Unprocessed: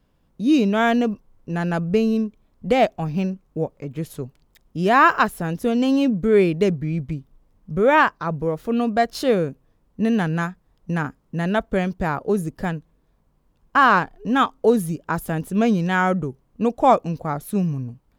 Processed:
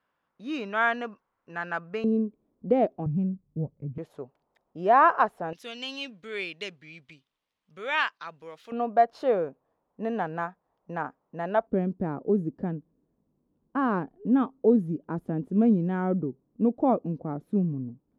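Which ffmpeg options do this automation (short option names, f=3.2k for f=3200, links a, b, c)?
-af "asetnsamples=n=441:p=0,asendcmd='2.04 bandpass f 340;3.06 bandpass f 130;3.98 bandpass f 720;5.53 bandpass f 3200;8.72 bandpass f 760;11.67 bandpass f 280',bandpass=f=1.4k:t=q:w=1.5:csg=0"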